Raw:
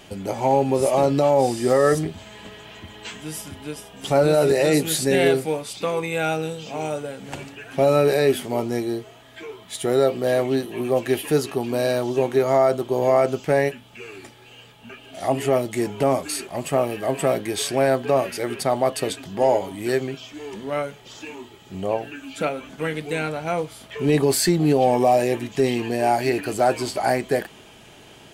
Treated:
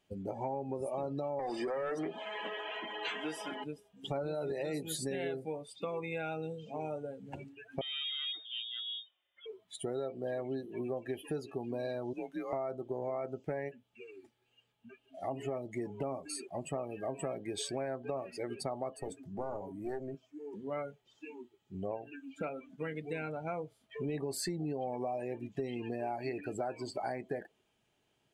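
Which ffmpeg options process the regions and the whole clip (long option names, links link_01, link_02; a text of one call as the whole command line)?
ffmpeg -i in.wav -filter_complex "[0:a]asettb=1/sr,asplit=3[link_01][link_02][link_03];[link_01]atrim=end=1.394[link_04];[link_02]atrim=start=1.39:end=3.64,asetpts=PTS-STARTPTS,afade=type=in:duration=0.004:curve=qsin,afade=type=out:start_time=2.246:duration=0.004:curve=qsin,highpass=260,acompressor=threshold=-22dB:ratio=5:attack=3.2:release=140:knee=1:detection=peak,asplit=2[link_05][link_06];[link_06]highpass=frequency=720:poles=1,volume=24dB,asoftclip=type=tanh:threshold=-9dB[link_07];[link_05][link_07]amix=inputs=2:normalize=0,lowpass=frequency=1800:poles=1,volume=-6dB[link_08];[link_03]atrim=start=3.636[link_09];[link_04][link_08]acrossfade=duration=0.004:curve1=hsin:curve2=qsin[link_10];[link_10][link_09]acrossfade=duration=0.004:curve1=qsin:curve2=hsin,asettb=1/sr,asplit=3[link_11][link_12][link_13];[link_11]atrim=end=7.814[link_14];[link_12]atrim=start=7.81:end=9.46,asetpts=PTS-STARTPTS,afade=type=in:duration=0.004:curve=qsin,afade=type=out:start_time=1.646:duration=0.004:curve=qsin,equalizer=frequency=230:width_type=o:width=0.42:gain=-14.5,aeval=exprs='(tanh(17.8*val(0)+0.55)-tanh(0.55))/17.8':channel_layout=same,lowpass=frequency=3100:width_type=q:width=0.5098,lowpass=frequency=3100:width_type=q:width=0.6013,lowpass=frequency=3100:width_type=q:width=0.9,lowpass=frequency=3100:width_type=q:width=2.563,afreqshift=-3700[link_15];[link_13]atrim=start=9.456[link_16];[link_14][link_15]acrossfade=duration=0.004:curve1=hsin:curve2=qsin[link_17];[link_17][link_16]acrossfade=duration=0.004:curve1=qsin:curve2=hsin,asettb=1/sr,asplit=3[link_18][link_19][link_20];[link_18]atrim=end=12.134[link_21];[link_19]atrim=start=12.13:end=12.53,asetpts=PTS-STARTPTS,afade=type=in:duration=0.004:curve=qsin,afade=type=out:start_time=0.396:duration=0.004:curve=qsin,highpass=frequency=1300:poles=1,afreqshift=-90[link_22];[link_20]atrim=start=12.526[link_23];[link_21][link_22]acrossfade=duration=0.004:curve1=hsin:curve2=qsin[link_24];[link_24][link_23]acrossfade=duration=0.004:curve1=qsin:curve2=hsin,asettb=1/sr,asplit=3[link_25][link_26][link_27];[link_25]atrim=end=18.964[link_28];[link_26]atrim=start=18.96:end=20.54,asetpts=PTS-STARTPTS,afade=type=in:duration=0.004:curve=qsin,afade=type=out:start_time=1.576:duration=0.004:curve=qsin,equalizer=frequency=3500:width=1.3:gain=-8,acrossover=split=310|3000[link_29][link_30][link_31];[link_30]acompressor=threshold=-21dB:ratio=3:attack=3.2:release=140:knee=2.83:detection=peak[link_32];[link_29][link_32][link_31]amix=inputs=3:normalize=0,aeval=exprs='clip(val(0),-1,0.0398)':channel_layout=same[link_33];[link_27]atrim=start=20.536[link_34];[link_28][link_33]acrossfade=duration=0.004:curve1=hsin:curve2=qsin[link_35];[link_35][link_34]acrossfade=duration=0.004:curve1=qsin:curve2=hsin,afftdn=noise_reduction=21:noise_floor=-30,acompressor=threshold=-25dB:ratio=6,volume=-9dB" out.wav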